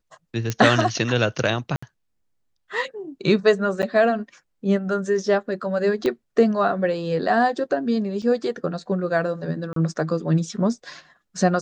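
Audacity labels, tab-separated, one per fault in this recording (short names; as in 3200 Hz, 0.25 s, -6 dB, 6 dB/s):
0.500000	0.500000	pop -10 dBFS
1.760000	1.820000	gap 65 ms
3.820000	3.830000	gap 9 ms
6.060000	6.060000	pop -12 dBFS
8.220000	8.220000	gap 4 ms
9.730000	9.760000	gap 33 ms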